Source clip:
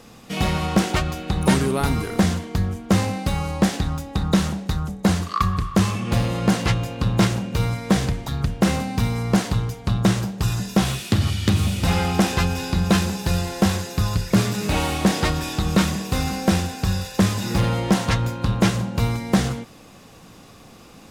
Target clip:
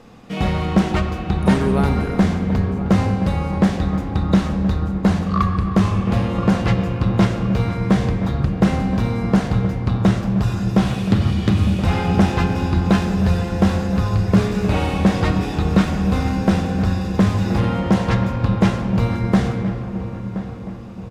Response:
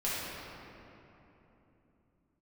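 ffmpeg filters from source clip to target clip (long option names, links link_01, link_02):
-filter_complex "[0:a]lowpass=frequency=1900:poles=1,asplit=2[link_01][link_02];[link_02]adelay=1024,lowpass=frequency=1500:poles=1,volume=-11.5dB,asplit=2[link_03][link_04];[link_04]adelay=1024,lowpass=frequency=1500:poles=1,volume=0.51,asplit=2[link_05][link_06];[link_06]adelay=1024,lowpass=frequency=1500:poles=1,volume=0.51,asplit=2[link_07][link_08];[link_08]adelay=1024,lowpass=frequency=1500:poles=1,volume=0.51,asplit=2[link_09][link_10];[link_10]adelay=1024,lowpass=frequency=1500:poles=1,volume=0.51[link_11];[link_01][link_03][link_05][link_07][link_09][link_11]amix=inputs=6:normalize=0,asplit=2[link_12][link_13];[1:a]atrim=start_sample=2205[link_14];[link_13][link_14]afir=irnorm=-1:irlink=0,volume=-12dB[link_15];[link_12][link_15]amix=inputs=2:normalize=0"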